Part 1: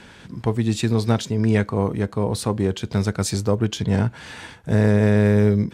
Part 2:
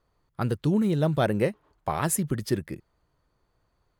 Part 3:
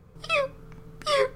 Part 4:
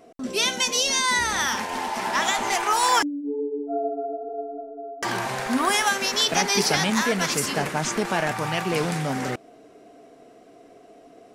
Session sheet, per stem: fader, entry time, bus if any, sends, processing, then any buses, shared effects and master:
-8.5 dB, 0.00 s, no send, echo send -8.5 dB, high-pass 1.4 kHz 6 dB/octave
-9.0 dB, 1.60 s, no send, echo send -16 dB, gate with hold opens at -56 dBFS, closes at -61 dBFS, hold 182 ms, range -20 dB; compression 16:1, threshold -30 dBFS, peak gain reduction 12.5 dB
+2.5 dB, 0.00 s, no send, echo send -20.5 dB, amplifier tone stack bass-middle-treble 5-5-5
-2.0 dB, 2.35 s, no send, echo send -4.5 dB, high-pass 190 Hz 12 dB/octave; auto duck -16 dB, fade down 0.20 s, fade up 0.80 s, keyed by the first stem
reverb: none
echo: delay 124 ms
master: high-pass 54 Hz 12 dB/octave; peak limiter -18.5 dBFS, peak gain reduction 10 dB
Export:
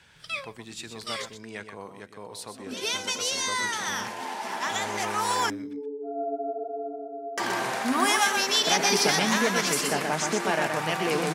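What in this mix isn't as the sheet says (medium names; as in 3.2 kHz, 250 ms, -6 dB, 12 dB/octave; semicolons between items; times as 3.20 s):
stem 2: muted; master: missing peak limiter -18.5 dBFS, peak gain reduction 10 dB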